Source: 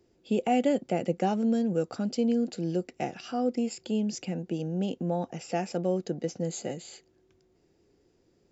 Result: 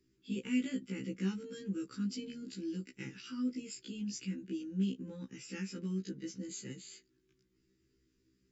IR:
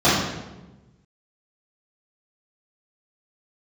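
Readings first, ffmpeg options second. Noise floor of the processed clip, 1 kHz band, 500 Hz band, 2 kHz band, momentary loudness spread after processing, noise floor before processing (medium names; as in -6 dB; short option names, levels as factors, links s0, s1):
-76 dBFS, -27.5 dB, -18.0 dB, -5.5 dB, 11 LU, -68 dBFS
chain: -af "asuperstop=centerf=680:order=4:qfactor=0.67,afftfilt=real='re*1.73*eq(mod(b,3),0)':imag='im*1.73*eq(mod(b,3),0)':win_size=2048:overlap=0.75,volume=0.708"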